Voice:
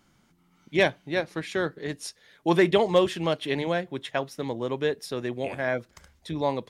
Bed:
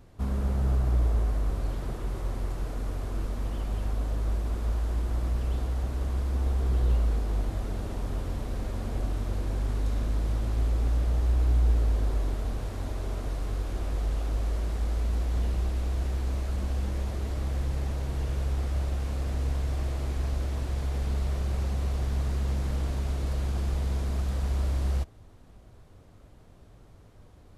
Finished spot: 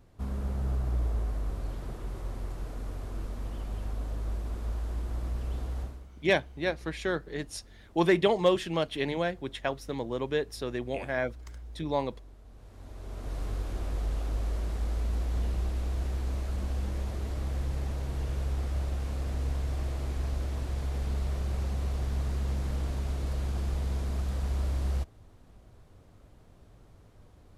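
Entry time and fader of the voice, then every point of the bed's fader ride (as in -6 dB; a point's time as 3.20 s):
5.50 s, -3.0 dB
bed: 5.82 s -5 dB
6.10 s -22 dB
12.44 s -22 dB
13.39 s -2.5 dB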